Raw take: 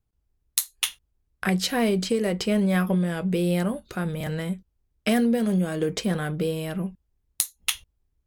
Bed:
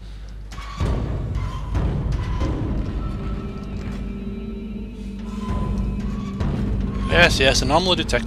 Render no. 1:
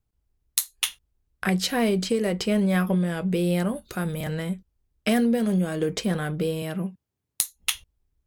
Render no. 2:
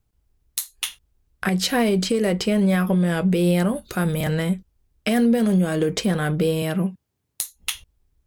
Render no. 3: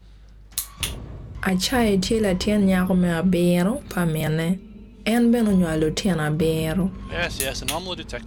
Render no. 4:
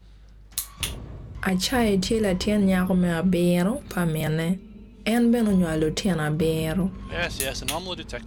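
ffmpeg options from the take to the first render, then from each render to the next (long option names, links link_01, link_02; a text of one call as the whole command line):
ffmpeg -i in.wav -filter_complex "[0:a]asettb=1/sr,asplit=3[link_01][link_02][link_03];[link_01]atrim=end=3.754[link_04];[link_02]atrim=start=3.75:end=4.21,asetpts=PTS-STARTPTS,afade=type=in:duration=0.004:curve=qsin,afade=type=out:start_time=0.456:duration=0.004:curve=qsin,highshelf=frequency=7800:gain=10[link_05];[link_03]atrim=start=4.206[link_06];[link_04][link_05]acrossfade=duration=0.004:curve1=hsin:curve2=qsin[link_07];[link_07][link_06]acrossfade=duration=0.004:curve1=qsin:curve2=hsin,asettb=1/sr,asplit=3[link_08][link_09][link_10];[link_08]atrim=end=6.624[link_11];[link_09]atrim=start=6.62:end=7.43,asetpts=PTS-STARTPTS,afade=type=in:duration=0.004:curve=qsin,afade=type=out:start_time=0.806:duration=0.004:curve=qsin,highpass=frequency=100:width=0.5412,highpass=frequency=100:width=1.3066[link_12];[link_10]atrim=start=7.426[link_13];[link_11][link_12]acrossfade=duration=0.004:curve1=hsin:curve2=qsin[link_14];[link_14][link_13]acrossfade=duration=0.004:curve1=qsin:curve2=hsin" out.wav
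ffmpeg -i in.wav -af "acontrast=69,alimiter=limit=-11.5dB:level=0:latency=1:release=194" out.wav
ffmpeg -i in.wav -i bed.wav -filter_complex "[1:a]volume=-11.5dB[link_01];[0:a][link_01]amix=inputs=2:normalize=0" out.wav
ffmpeg -i in.wav -af "volume=-2dB" out.wav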